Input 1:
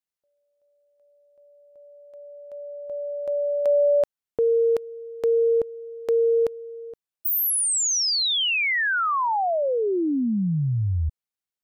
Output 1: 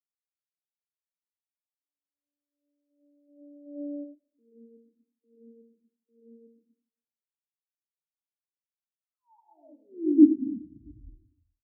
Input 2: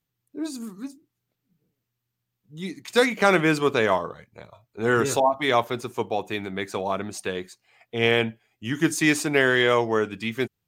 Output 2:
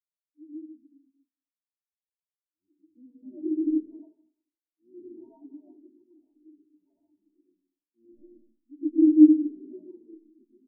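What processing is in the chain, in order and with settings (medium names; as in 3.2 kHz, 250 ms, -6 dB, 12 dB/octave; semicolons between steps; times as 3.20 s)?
octave divider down 1 oct, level -1 dB; cascade formant filter u; comb 3.2 ms, depth 45%; algorithmic reverb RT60 1.4 s, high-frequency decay 0.35×, pre-delay 50 ms, DRR -4.5 dB; spectral contrast expander 2.5:1; trim +1.5 dB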